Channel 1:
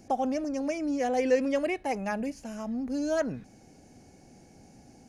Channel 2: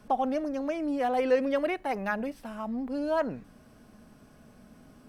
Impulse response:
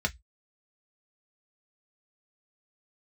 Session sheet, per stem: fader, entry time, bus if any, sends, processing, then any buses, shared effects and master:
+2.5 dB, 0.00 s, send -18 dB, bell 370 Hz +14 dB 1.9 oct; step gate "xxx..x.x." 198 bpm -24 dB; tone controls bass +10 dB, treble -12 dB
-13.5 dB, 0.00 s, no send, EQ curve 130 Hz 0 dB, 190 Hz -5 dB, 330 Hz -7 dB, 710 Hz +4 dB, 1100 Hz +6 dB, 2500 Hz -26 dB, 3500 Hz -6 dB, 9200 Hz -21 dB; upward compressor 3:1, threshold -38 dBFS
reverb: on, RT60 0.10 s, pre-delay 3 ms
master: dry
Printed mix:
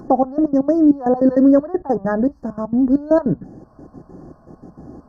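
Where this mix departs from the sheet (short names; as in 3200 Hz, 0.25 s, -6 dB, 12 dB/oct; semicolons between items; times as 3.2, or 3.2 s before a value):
stem 2 -13.5 dB -> -3.5 dB; master: extra brick-wall FIR band-stop 1900–4200 Hz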